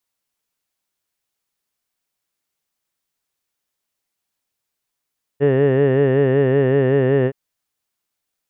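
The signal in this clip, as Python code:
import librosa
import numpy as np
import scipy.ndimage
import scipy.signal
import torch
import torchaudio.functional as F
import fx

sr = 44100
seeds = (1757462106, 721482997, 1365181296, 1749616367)

y = fx.formant_vowel(sr, seeds[0], length_s=1.92, hz=137.0, glide_st=-0.5, vibrato_hz=5.3, vibrato_st=0.9, f1_hz=450.0, f2_hz=1800.0, f3_hz=2800.0)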